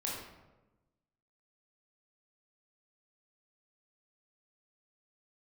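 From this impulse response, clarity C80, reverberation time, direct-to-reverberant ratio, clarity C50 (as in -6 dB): 4.0 dB, 1.1 s, -4.5 dB, 1.0 dB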